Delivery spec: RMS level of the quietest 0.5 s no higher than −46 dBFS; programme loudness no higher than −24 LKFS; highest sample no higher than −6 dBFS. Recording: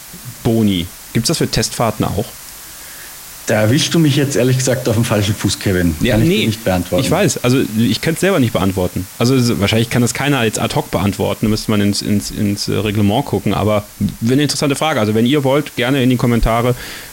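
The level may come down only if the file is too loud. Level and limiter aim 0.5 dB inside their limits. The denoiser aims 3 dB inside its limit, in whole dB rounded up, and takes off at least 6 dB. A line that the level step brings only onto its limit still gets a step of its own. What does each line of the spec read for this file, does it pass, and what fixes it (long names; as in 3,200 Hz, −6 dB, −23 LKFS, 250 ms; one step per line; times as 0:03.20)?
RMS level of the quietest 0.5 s −33 dBFS: out of spec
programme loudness −15.0 LKFS: out of spec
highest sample −4.0 dBFS: out of spec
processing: broadband denoise 7 dB, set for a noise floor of −33 dBFS
level −9.5 dB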